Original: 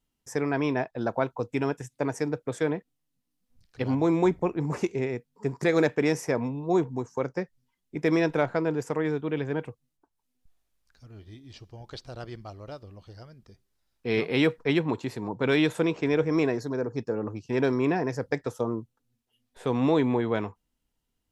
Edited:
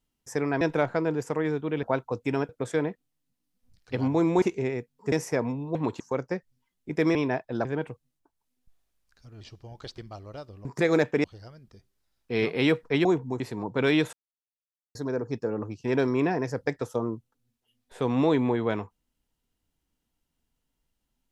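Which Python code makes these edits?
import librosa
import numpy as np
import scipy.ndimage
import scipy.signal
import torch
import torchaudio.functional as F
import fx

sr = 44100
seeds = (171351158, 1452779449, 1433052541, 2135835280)

y = fx.edit(x, sr, fx.swap(start_s=0.61, length_s=0.5, other_s=8.21, other_length_s=1.22),
    fx.cut(start_s=1.77, length_s=0.59),
    fx.cut(start_s=4.29, length_s=0.5),
    fx.move(start_s=5.49, length_s=0.59, to_s=12.99),
    fx.swap(start_s=6.71, length_s=0.35, other_s=14.8, other_length_s=0.25),
    fx.cut(start_s=11.19, length_s=0.31),
    fx.cut(start_s=12.07, length_s=0.25),
    fx.silence(start_s=15.78, length_s=0.82), tone=tone)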